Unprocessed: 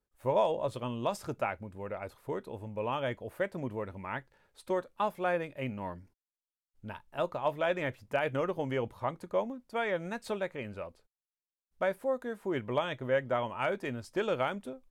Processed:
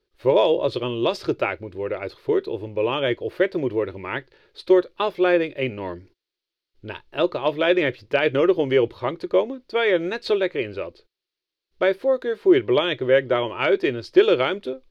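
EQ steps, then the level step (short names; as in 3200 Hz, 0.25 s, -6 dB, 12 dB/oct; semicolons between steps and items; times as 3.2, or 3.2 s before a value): EQ curve 150 Hz 0 dB, 220 Hz -6 dB, 350 Hz +14 dB, 770 Hz -3 dB, 4400 Hz +12 dB, 7600 Hz -10 dB; +6.5 dB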